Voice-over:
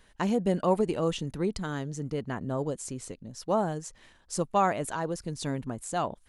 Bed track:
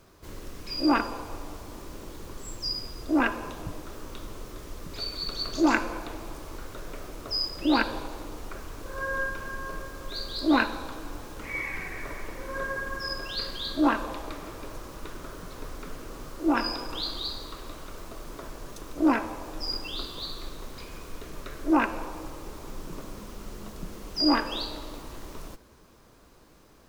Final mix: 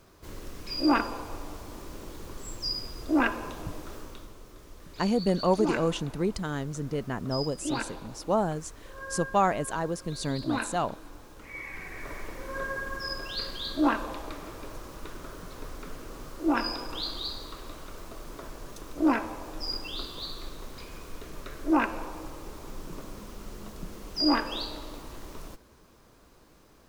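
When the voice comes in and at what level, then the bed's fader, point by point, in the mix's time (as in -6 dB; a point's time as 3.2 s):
4.80 s, +1.0 dB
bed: 3.95 s -0.5 dB
4.36 s -8.5 dB
11.51 s -8.5 dB
12.16 s -1.5 dB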